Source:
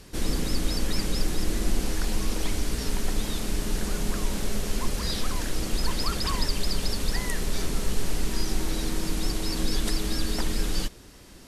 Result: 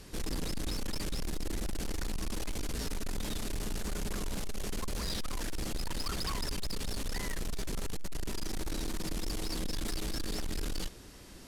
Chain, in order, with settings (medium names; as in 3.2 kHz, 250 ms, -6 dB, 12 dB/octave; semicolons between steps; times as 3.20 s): saturation -28.5 dBFS, distortion -8 dB; trim -2 dB